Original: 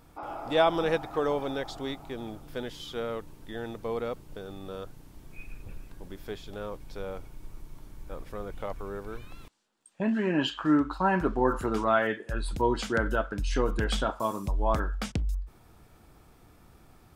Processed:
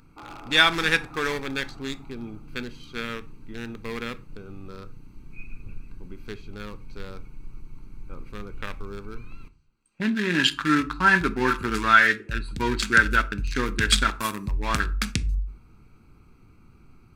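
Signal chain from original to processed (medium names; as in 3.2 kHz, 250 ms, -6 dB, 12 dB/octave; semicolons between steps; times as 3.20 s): local Wiener filter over 25 samples; FFT filter 250 Hz 0 dB, 410 Hz -4 dB, 660 Hz -14 dB, 1.6 kHz +13 dB; on a send at -12 dB: reverberation RT60 0.40 s, pre-delay 5 ms; on the sum: dynamic bell 9.1 kHz, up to +4 dB, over -44 dBFS, Q 0.9; band-stop 3 kHz, Q 11; trim +3 dB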